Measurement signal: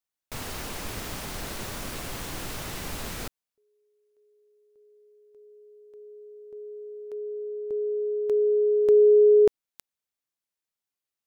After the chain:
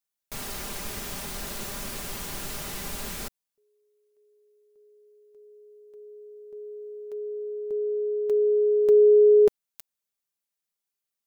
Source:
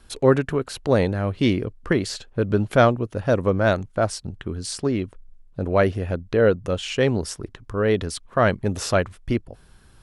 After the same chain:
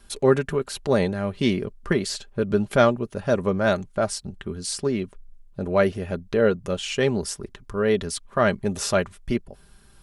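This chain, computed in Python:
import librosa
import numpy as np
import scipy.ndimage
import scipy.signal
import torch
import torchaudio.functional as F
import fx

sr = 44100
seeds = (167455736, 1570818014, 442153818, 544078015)

y = fx.high_shelf(x, sr, hz=5600.0, db=6.0)
y = y + 0.46 * np.pad(y, (int(5.0 * sr / 1000.0), 0))[:len(y)]
y = F.gain(torch.from_numpy(y), -2.5).numpy()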